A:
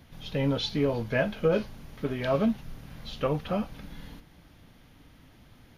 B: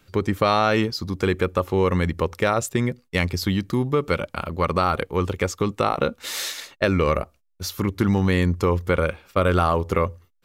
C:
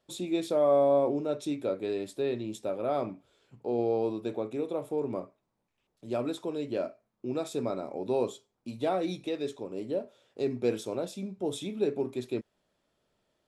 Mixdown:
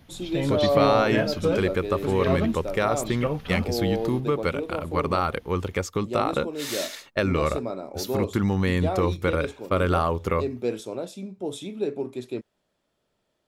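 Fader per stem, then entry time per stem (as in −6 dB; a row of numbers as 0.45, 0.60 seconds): 0.0, −3.5, +1.0 decibels; 0.00, 0.35, 0.00 seconds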